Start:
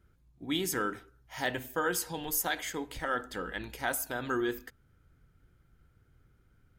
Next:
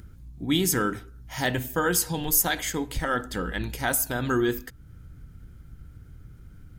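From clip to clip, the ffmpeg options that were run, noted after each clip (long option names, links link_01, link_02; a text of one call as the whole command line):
ffmpeg -i in.wav -filter_complex "[0:a]bass=frequency=250:gain=10,treble=frequency=4000:gain=5,asplit=2[link_01][link_02];[link_02]acompressor=mode=upward:threshold=-37dB:ratio=2.5,volume=-2.5dB[link_03];[link_01][link_03]amix=inputs=2:normalize=0,aeval=exprs='val(0)+0.002*(sin(2*PI*60*n/s)+sin(2*PI*2*60*n/s)/2+sin(2*PI*3*60*n/s)/3+sin(2*PI*4*60*n/s)/4+sin(2*PI*5*60*n/s)/5)':channel_layout=same" out.wav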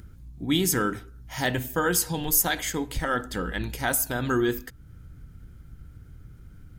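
ffmpeg -i in.wav -af anull out.wav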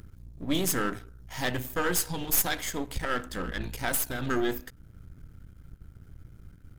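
ffmpeg -i in.wav -af "aeval=exprs='if(lt(val(0),0),0.251*val(0),val(0))':channel_layout=same" out.wav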